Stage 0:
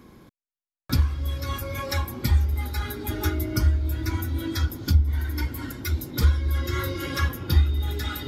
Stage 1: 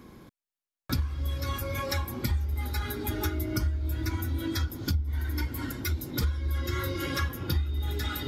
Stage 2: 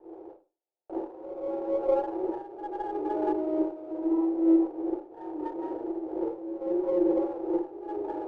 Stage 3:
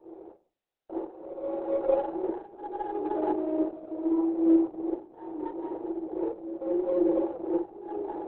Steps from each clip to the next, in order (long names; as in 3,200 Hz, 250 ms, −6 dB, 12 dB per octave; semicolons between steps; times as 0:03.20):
downward compressor 3 to 1, threshold −27 dBFS, peak gain reduction 11 dB
Chebyshev band-pass filter 320–900 Hz, order 5; four-comb reverb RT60 0.33 s, combs from 33 ms, DRR −8.5 dB; windowed peak hold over 5 samples; level +3 dB
Opus 8 kbit/s 48,000 Hz